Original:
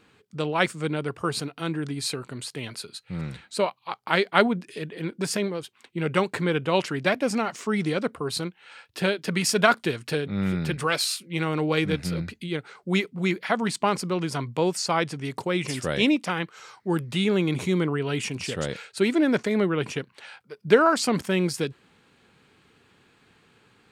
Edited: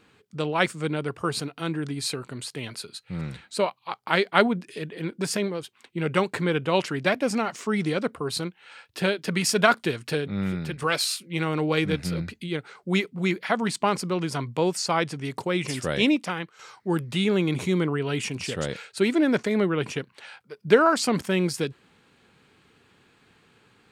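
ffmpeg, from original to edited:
-filter_complex "[0:a]asplit=3[a][b][c];[a]atrim=end=10.82,asetpts=PTS-STARTPTS,afade=t=out:st=10.25:d=0.57:silence=0.473151[d];[b]atrim=start=10.82:end=16.59,asetpts=PTS-STARTPTS,afade=t=in:d=0.004:c=hsin:silence=0.473151,afade=t=out:st=5.34:d=0.43:silence=0.375837[e];[c]atrim=start=16.59,asetpts=PTS-STARTPTS,afade=t=in:d=0.004:c=hsin:silence=0.375837[f];[d][e][f]concat=n=3:v=0:a=1"

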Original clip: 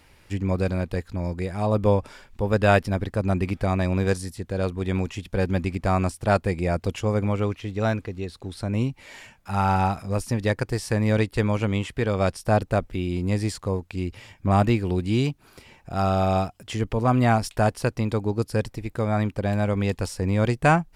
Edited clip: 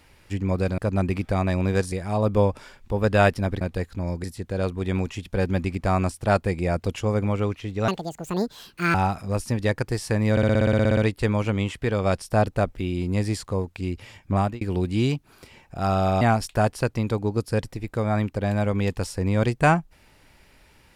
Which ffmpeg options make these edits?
-filter_complex "[0:a]asplit=20[a][b][c][d][e][f][g][h][i][j][k][l][m][n][o][p][q][r][s][t];[a]atrim=end=0.782[u];[b]atrim=start=3.098:end=4.242[v];[c]atrim=start=1.408:end=3.102[w];[d]atrim=start=0.778:end=1.412[x];[e]atrim=start=4.238:end=7.884[y];[f]atrim=start=7.88:end=9.75,asetpts=PTS-STARTPTS,asetrate=77616,aresample=44100,atrim=end_sample=46856,asetpts=PTS-STARTPTS[z];[g]atrim=start=9.746:end=11.182[aa];[h]atrim=start=11.118:end=11.182[ab];[i]atrim=start=11.118:end=11.182[ac];[j]atrim=start=11.118:end=11.182[ad];[k]atrim=start=11.118:end=11.182[ae];[l]atrim=start=11.118:end=11.182[af];[m]atrim=start=11.118:end=11.182[ag];[n]atrim=start=11.118:end=11.182[ah];[o]atrim=start=11.118:end=11.182[ai];[p]atrim=start=11.118:end=11.182[aj];[q]atrim=start=11.118:end=11.182[ak];[r]atrim=start=11.118:end=14.76,asetpts=PTS-STARTPTS,afade=t=out:st=3.352:d=0.29[al];[s]atrim=start=14.76:end=16.362,asetpts=PTS-STARTPTS,afade=t=in:d=0.004:c=hsin[am];[t]atrim=start=17.228[an];[u][v]acrossfade=d=0.004:c1=hsin:c2=hsin[ao];[ao][w]acrossfade=d=0.004:c1=hsin:c2=hsin[ap];[ap][x]acrossfade=d=0.004:c1=hsin:c2=hsin[aq];[aq][y]acrossfade=d=0.004:c1=hsin:c2=hsin[ar];[ar][z]acrossfade=d=0.004:c1=hsin:c2=hsin[as];[as][aa]acrossfade=d=0.004:c1=hsin:c2=hsin[at];[at][ab]acrossfade=d=0.004:c1=hsin:c2=hsin[au];[au][ac]acrossfade=d=0.004:c1=hsin:c2=hsin[av];[av][ad]acrossfade=d=0.004:c1=hsin:c2=hsin[aw];[aw][ae]acrossfade=d=0.004:c1=hsin:c2=hsin[ax];[ax][af]acrossfade=d=0.004:c1=hsin:c2=hsin[ay];[ay][ag]acrossfade=d=0.004:c1=hsin:c2=hsin[az];[az][ah]acrossfade=d=0.004:c1=hsin:c2=hsin[ba];[ba][ai]acrossfade=d=0.004:c1=hsin:c2=hsin[bb];[bb][aj]acrossfade=d=0.004:c1=hsin:c2=hsin[bc];[bc][ak]acrossfade=d=0.004:c1=hsin:c2=hsin[bd];[al][am]concat=n=2:v=0:a=1[be];[bd][be]acrossfade=d=0.004:c1=hsin:c2=hsin[bf];[bf][an]acrossfade=d=0.004:c1=hsin:c2=hsin"

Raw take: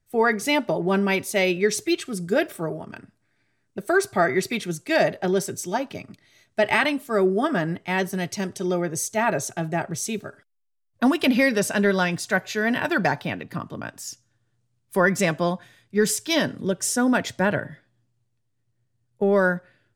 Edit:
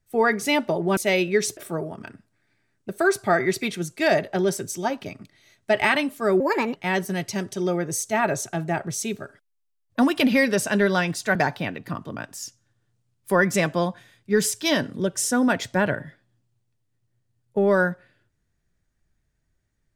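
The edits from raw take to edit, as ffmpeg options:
-filter_complex "[0:a]asplit=6[a][b][c][d][e][f];[a]atrim=end=0.972[g];[b]atrim=start=1.258:end=1.862[h];[c]atrim=start=2.458:end=7.294[i];[d]atrim=start=7.29:end=7.8,asetpts=PTS-STARTPTS,asetrate=62181,aresample=44100,atrim=end_sample=15951,asetpts=PTS-STARTPTS[j];[e]atrim=start=7.796:end=12.392[k];[f]atrim=start=12.998[l];[g][h]acrossfade=d=0.004:c1=hsin:c2=hsin[m];[m][i]acrossfade=d=0.004:c1=hsin:c2=hsin[n];[n][j]acrossfade=d=0.004:c1=hsin:c2=hsin[o];[o][k]acrossfade=d=0.004:c1=hsin:c2=hsin[p];[p][l]acrossfade=d=0.004:c1=hsin:c2=hsin"

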